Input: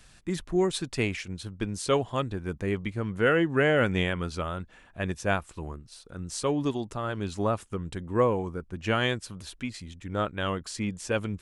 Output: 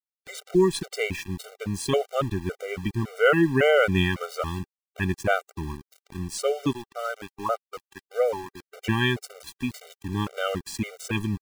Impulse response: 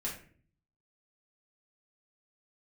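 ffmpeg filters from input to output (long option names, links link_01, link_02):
-filter_complex "[0:a]asettb=1/sr,asplit=3[link_01][link_02][link_03];[link_01]atrim=end=6.734[link_04];[link_02]atrim=start=6.73:end=8.74,asetpts=PTS-STARTPTS,afade=type=in:duration=0.004:curve=qsin,afade=type=out:start_time=2.006:duration=0.004:curve=qsin,acrossover=split=460 2800:gain=0.141 1 0.158[link_05][link_06][link_07];[link_05][link_06][link_07]amix=inputs=3:normalize=0[link_08];[link_03]atrim=start=8.736[link_09];[link_04][link_08]acrossfade=duration=0.004:curve1=hsin:curve2=qsin[link_10];[link_10][link_09]acrossfade=duration=0.004:curve1=qsin:curve2=hsin,aeval=exprs='val(0)*gte(abs(val(0)),0.0112)':channel_layout=same,afftfilt=real='re*gt(sin(2*PI*1.8*pts/sr)*(1-2*mod(floor(b*sr/1024/390),2)),0)':imag='im*gt(sin(2*PI*1.8*pts/sr)*(1-2*mod(floor(b*sr/1024/390),2)),0)':win_size=1024:overlap=0.75,volume=5.5dB"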